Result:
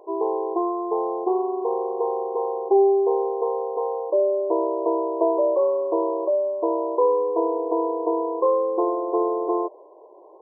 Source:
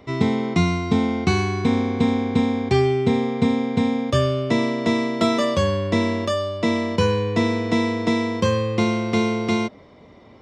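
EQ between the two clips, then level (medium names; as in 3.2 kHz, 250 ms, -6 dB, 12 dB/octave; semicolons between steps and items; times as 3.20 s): brick-wall FIR band-pass 320–1100 Hz; +3.0 dB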